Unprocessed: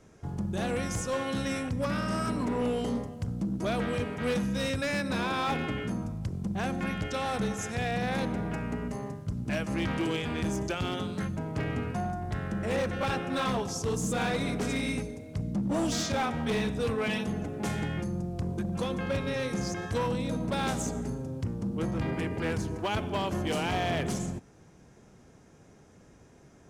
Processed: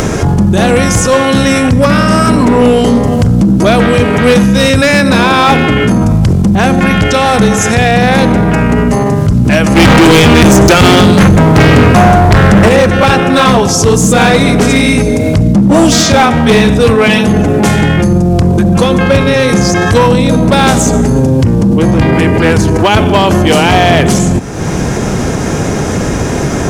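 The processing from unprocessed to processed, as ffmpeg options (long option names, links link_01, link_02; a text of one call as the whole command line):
ffmpeg -i in.wav -filter_complex "[0:a]asettb=1/sr,asplit=3[link_01][link_02][link_03];[link_01]atrim=end=9.744[link_04];[link_02]atrim=start=9.74:end=12.69,asetpts=PTS-STARTPTS,afade=type=in:duration=0.004:curve=qsin,afade=type=out:start_time=2.946:duration=0.004:curve=qsin,volume=34.5dB,asoftclip=hard,volume=-34.5dB[link_05];[link_03]atrim=start=12.686[link_06];[link_04][link_05]acrossfade=duration=0.004:curve1=hsin:curve2=qsin[link_07];[link_07][link_06]acrossfade=duration=0.004:curve1=qsin:curve2=hsin,asettb=1/sr,asplit=3[link_08][link_09][link_10];[link_08]atrim=end=21.154[link_11];[link_09]atrim=start=21.15:end=22.09,asetpts=PTS-STARTPTS,afade=type=in:duration=0.004:curve=qsin,afade=type=out:start_time=0.936:duration=0.004:curve=qsin,bandreject=frequency=1300:width=12[link_12];[link_10]atrim=start=22.086[link_13];[link_11][link_12]acrossfade=duration=0.004:curve1=hsin:curve2=qsin[link_14];[link_14][link_13]acrossfade=duration=0.004:curve1=qsin:curve2=hsin,acompressor=mode=upward:threshold=-37dB:ratio=2.5,alimiter=level_in=35.5dB:limit=-1dB:release=50:level=0:latency=1,volume=-1dB" out.wav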